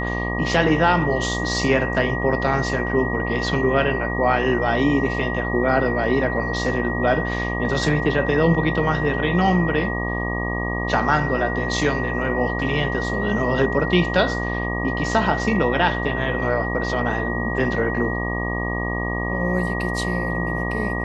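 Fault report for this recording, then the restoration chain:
mains buzz 60 Hz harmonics 20 −26 dBFS
whistle 1,900 Hz −27 dBFS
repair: notch filter 1,900 Hz, Q 30
hum removal 60 Hz, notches 20

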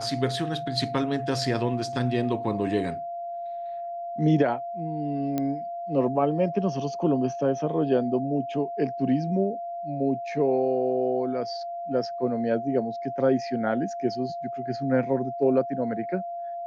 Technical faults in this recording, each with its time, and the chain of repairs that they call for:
whistle 690 Hz −31 dBFS
0:05.38: click −14 dBFS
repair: click removal
notch filter 690 Hz, Q 30

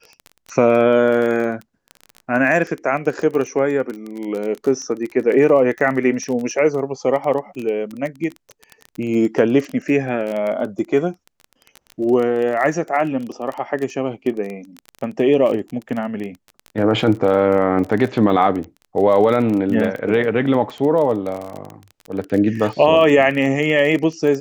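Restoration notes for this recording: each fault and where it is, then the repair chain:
surface crackle 21 per second −24 dBFS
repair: click removal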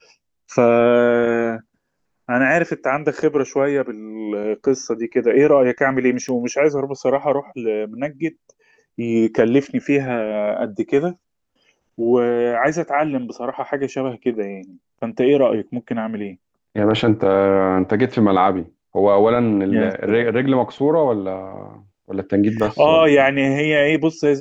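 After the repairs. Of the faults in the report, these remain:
none of them is left

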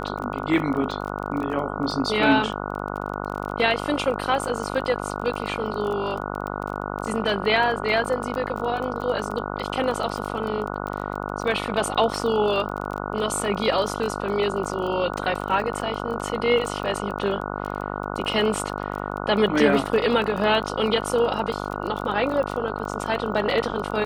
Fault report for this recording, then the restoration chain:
mains buzz 50 Hz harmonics 29 −30 dBFS
surface crackle 23 per second −29 dBFS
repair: click removal
hum removal 50 Hz, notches 29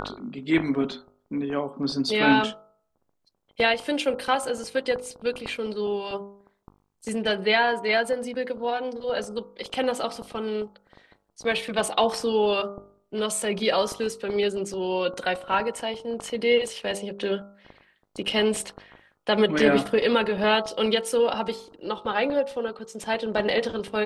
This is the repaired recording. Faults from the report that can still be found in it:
none of them is left

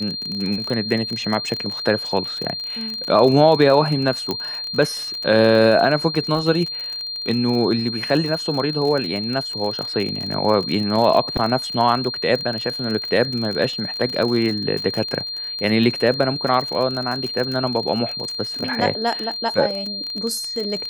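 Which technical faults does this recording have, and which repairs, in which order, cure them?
surface crackle 35 per second −24 dBFS
whistle 4,200 Hz −26 dBFS
0:04.31: click −9 dBFS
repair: click removal
notch filter 4,200 Hz, Q 30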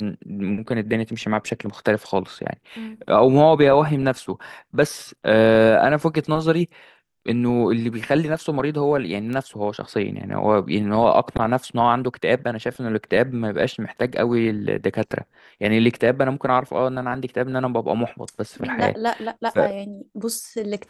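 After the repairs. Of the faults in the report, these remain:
none of them is left

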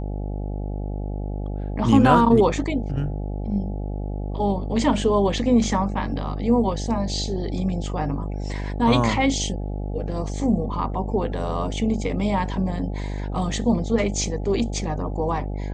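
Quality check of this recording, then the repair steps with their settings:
mains buzz 50 Hz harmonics 17 −28 dBFS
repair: hum removal 50 Hz, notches 17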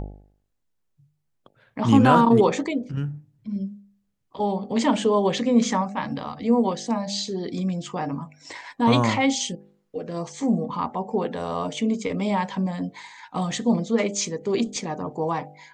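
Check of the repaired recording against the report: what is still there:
none of them is left

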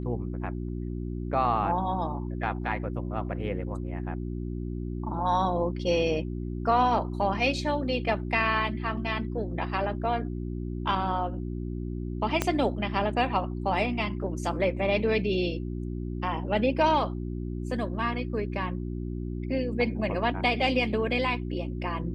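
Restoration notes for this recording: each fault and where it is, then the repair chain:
mains hum 60 Hz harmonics 6 −33 dBFS
0:12.42: click −10 dBFS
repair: click removal
hum removal 60 Hz, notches 6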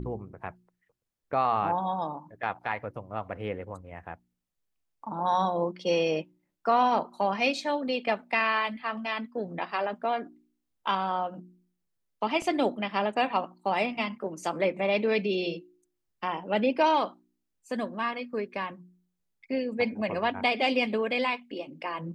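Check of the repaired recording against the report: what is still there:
0:12.42: click

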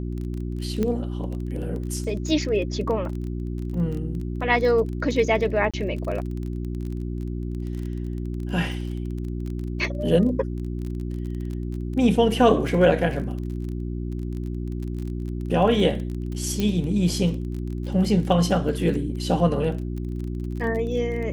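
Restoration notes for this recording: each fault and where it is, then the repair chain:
surface crackle 24 per second −31 dBFS
mains hum 60 Hz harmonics 6 −29 dBFS
0:00.83: click −14 dBFS
0:05.71–0:05.74: drop-out 26 ms
0:16.60: click −12 dBFS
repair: click removal
hum removal 60 Hz, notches 6
repair the gap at 0:05.71, 26 ms

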